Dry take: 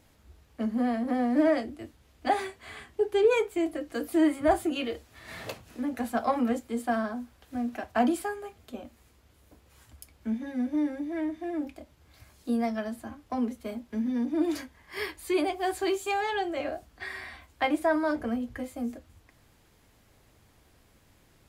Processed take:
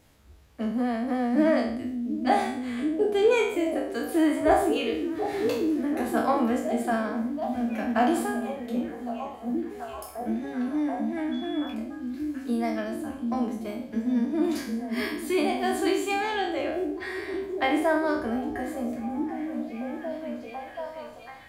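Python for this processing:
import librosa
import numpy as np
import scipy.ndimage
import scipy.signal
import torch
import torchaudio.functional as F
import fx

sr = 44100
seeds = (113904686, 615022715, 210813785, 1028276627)

y = fx.spec_trails(x, sr, decay_s=0.62)
y = fx.dmg_tone(y, sr, hz=3400.0, level_db=-43.0, at=(11.31, 11.72), fade=0.02)
y = fx.echo_stepped(y, sr, ms=731, hz=180.0, octaves=0.7, feedback_pct=70, wet_db=-1)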